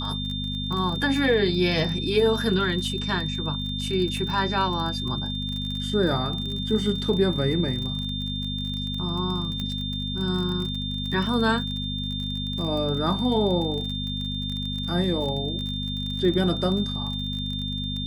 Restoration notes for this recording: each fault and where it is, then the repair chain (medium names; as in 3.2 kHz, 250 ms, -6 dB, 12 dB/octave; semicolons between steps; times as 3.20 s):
crackle 31 per s -30 dBFS
hum 50 Hz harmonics 5 -31 dBFS
whine 3.6 kHz -31 dBFS
9.60 s: pop -18 dBFS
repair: de-click; de-hum 50 Hz, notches 5; band-stop 3.6 kHz, Q 30